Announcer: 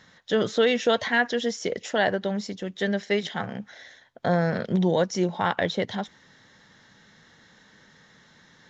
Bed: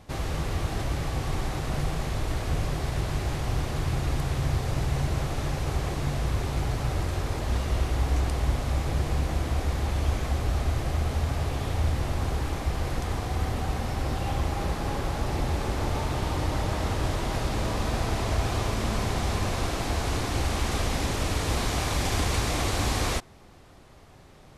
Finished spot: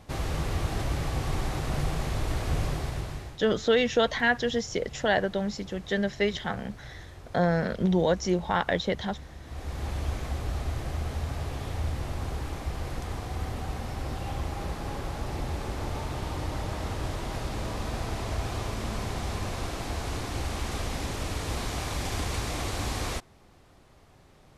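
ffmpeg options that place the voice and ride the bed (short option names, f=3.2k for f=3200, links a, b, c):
-filter_complex "[0:a]adelay=3100,volume=-1.5dB[a];[1:a]volume=12dB,afade=t=out:st=2.66:d=0.71:silence=0.141254,afade=t=in:st=9.43:d=0.44:silence=0.237137[b];[a][b]amix=inputs=2:normalize=0"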